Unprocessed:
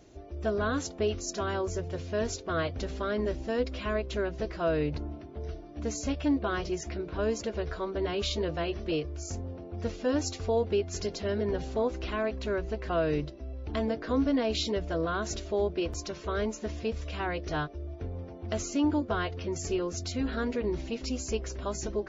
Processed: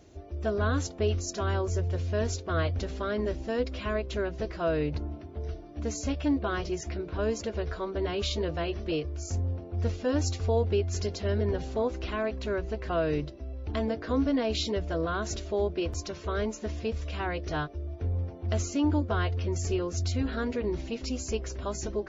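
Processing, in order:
parametric band 85 Hz +10.5 dB 0.24 octaves

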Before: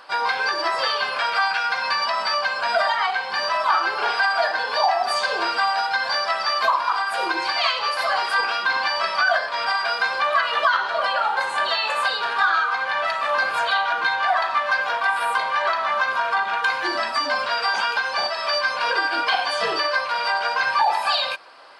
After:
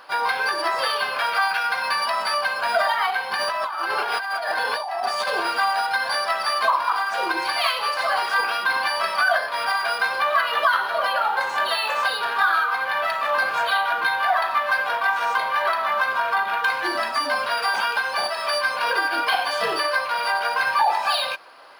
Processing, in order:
0:03.31–0:05.45: compressor whose output falls as the input rises −25 dBFS, ratio −1
linearly interpolated sample-rate reduction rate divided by 3×

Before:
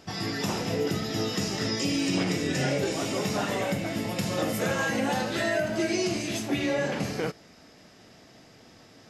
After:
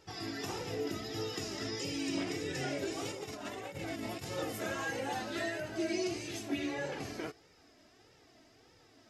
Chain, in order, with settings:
0:03.05–0:04.25: compressor whose output falls as the input rises −31 dBFS, ratio −0.5
flanger 1.6 Hz, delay 2.1 ms, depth 1.1 ms, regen −1%
level −6 dB

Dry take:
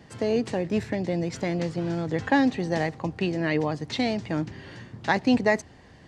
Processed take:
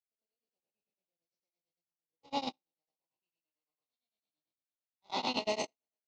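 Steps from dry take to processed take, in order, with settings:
peak hold with a decay on every bin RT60 2.21 s
low-pass filter 5,600 Hz 24 dB per octave
spectral tilt +4 dB per octave
output level in coarse steps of 10 dB
on a send: backwards echo 101 ms −6 dB
on the sum: noise gate −21 dBFS, range −56 dB
Butterworth band-reject 1,700 Hz, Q 1.4
tremolo along a rectified sine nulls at 8.9 Hz
level −8.5 dB

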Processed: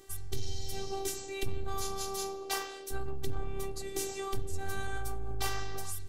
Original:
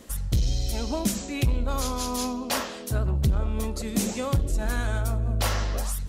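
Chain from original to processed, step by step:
phases set to zero 391 Hz
level −4.5 dB

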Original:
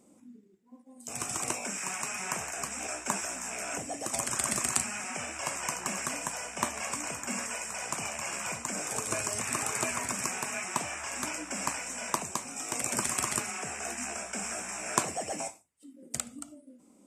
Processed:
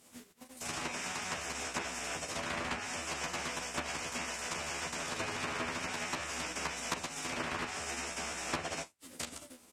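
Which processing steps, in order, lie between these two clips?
compressing power law on the bin magnitudes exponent 0.39
treble cut that deepens with the level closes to 2,600 Hz, closed at −27.5 dBFS
phase-vocoder stretch with locked phases 0.57×
double-tracking delay 12 ms −3 dB

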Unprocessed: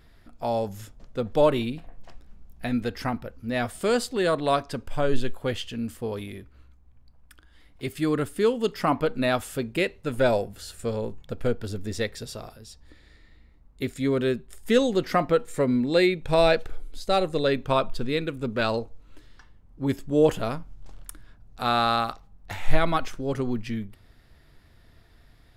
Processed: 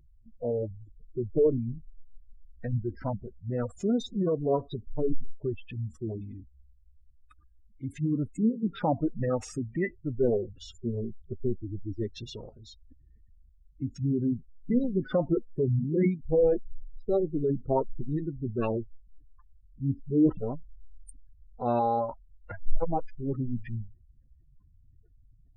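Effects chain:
gate on every frequency bin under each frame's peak −15 dB strong
formants moved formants −5 semitones
level −2.5 dB

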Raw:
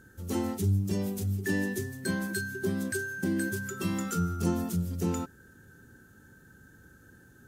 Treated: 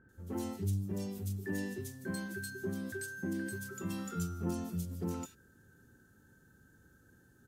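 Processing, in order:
multiband delay without the direct sound lows, highs 90 ms, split 2,100 Hz
level −7.5 dB

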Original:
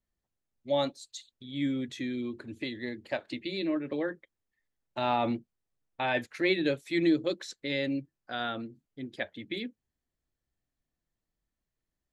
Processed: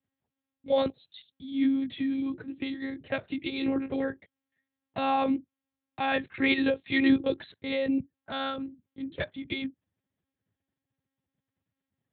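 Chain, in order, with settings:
one-pitch LPC vocoder at 8 kHz 270 Hz
high-pass filter 92 Hz 24 dB per octave
low-shelf EQ 260 Hz +8.5 dB
level +1.5 dB

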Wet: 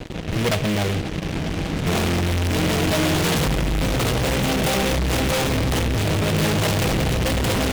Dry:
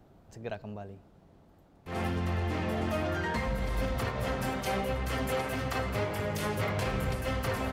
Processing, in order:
adaptive Wiener filter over 41 samples
camcorder AGC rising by 7.2 dB per second
0:02.56–0:04.11: comb filter 6.9 ms, depth 47%
0:05.44–0:06.24: low-shelf EQ 270 Hz +10.5 dB
downward compressor, threshold −35 dBFS, peak gain reduction 13 dB
fuzz pedal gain 54 dB, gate −58 dBFS
tuned comb filter 160 Hz, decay 0.21 s, harmonics all
short delay modulated by noise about 2,100 Hz, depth 0.16 ms

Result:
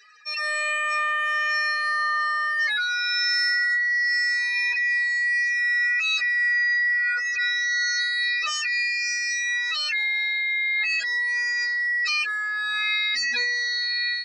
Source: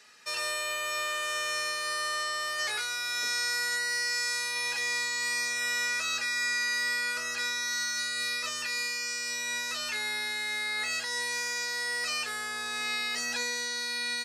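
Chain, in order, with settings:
expanding power law on the bin magnitudes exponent 2.9
automatic gain control gain up to 5 dB
level +3.5 dB

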